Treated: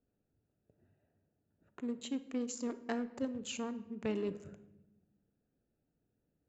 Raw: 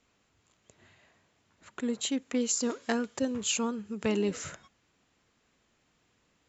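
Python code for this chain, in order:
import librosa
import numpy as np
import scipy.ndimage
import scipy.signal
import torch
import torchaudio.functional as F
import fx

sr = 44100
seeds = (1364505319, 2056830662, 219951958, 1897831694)

y = fx.wiener(x, sr, points=41)
y = fx.high_shelf(y, sr, hz=3900.0, db=-10.0)
y = fx.room_shoebox(y, sr, seeds[0], volume_m3=490.0, walls='mixed', distance_m=0.33)
y = y * 10.0 ** (-6.5 / 20.0)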